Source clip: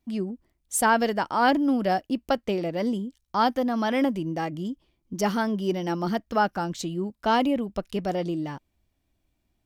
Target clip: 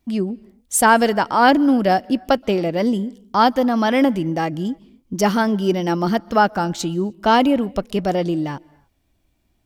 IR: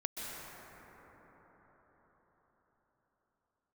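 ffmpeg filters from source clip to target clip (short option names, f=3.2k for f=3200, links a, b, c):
-filter_complex "[0:a]asplit=2[a][b];[1:a]atrim=start_sample=2205,afade=t=out:st=0.36:d=0.01,atrim=end_sample=16317[c];[b][c]afir=irnorm=-1:irlink=0,volume=-22.5dB[d];[a][d]amix=inputs=2:normalize=0,volume=7dB"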